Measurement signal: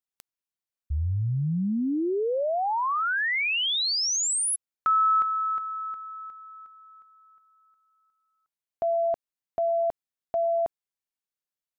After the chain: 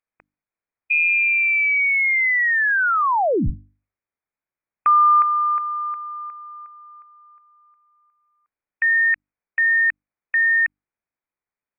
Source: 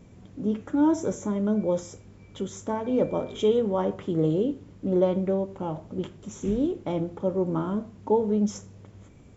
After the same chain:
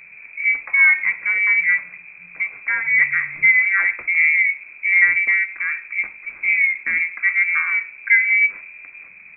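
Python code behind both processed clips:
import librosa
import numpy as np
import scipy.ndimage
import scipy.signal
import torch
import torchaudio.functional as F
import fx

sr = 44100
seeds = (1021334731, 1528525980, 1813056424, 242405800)

y = fx.freq_invert(x, sr, carrier_hz=2500)
y = fx.hum_notches(y, sr, base_hz=50, count=6)
y = y * 10.0 ** (7.5 / 20.0)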